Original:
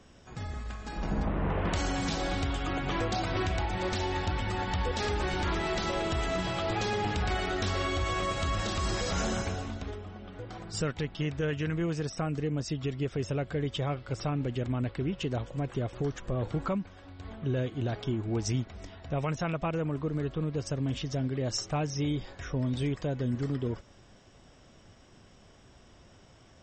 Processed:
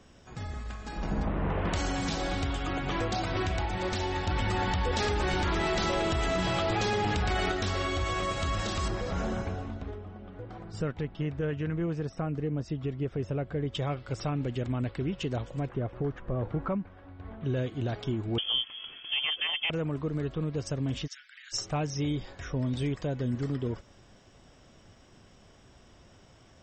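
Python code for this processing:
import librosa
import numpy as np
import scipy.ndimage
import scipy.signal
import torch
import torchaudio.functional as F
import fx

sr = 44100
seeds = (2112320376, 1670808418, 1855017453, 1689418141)

y = fx.env_flatten(x, sr, amount_pct=70, at=(4.27, 7.52))
y = fx.lowpass(y, sr, hz=1300.0, slope=6, at=(8.88, 13.75))
y = fx.lowpass(y, sr, hz=1900.0, slope=12, at=(15.69, 17.41))
y = fx.freq_invert(y, sr, carrier_hz=3300, at=(18.38, 19.7))
y = fx.steep_highpass(y, sr, hz=1400.0, slope=72, at=(21.06, 21.52), fade=0.02)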